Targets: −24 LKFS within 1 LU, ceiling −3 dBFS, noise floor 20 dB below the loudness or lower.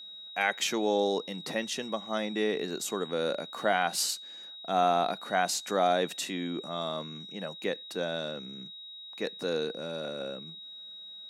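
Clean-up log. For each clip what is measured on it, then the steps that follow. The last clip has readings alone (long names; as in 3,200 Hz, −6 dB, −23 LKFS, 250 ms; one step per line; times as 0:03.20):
interfering tone 3,800 Hz; level of the tone −43 dBFS; integrated loudness −31.0 LKFS; sample peak −12.5 dBFS; target loudness −24.0 LKFS
→ notch filter 3,800 Hz, Q 30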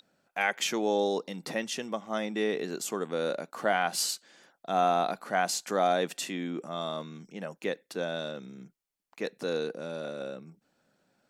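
interfering tone none found; integrated loudness −31.5 LKFS; sample peak −12.5 dBFS; target loudness −24.0 LKFS
→ level +7.5 dB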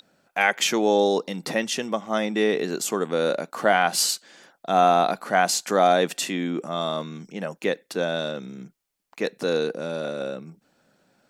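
integrated loudness −24.0 LKFS; sample peak −5.0 dBFS; background noise floor −73 dBFS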